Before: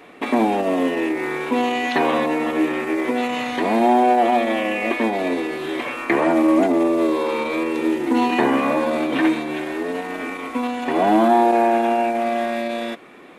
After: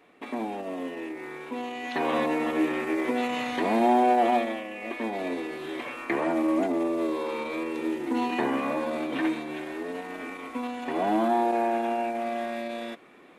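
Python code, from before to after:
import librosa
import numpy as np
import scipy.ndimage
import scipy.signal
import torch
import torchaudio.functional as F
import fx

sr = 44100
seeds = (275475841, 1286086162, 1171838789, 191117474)

y = fx.gain(x, sr, db=fx.line((1.76, -14.0), (2.19, -5.5), (4.36, -5.5), (4.68, -16.0), (5.17, -9.0)))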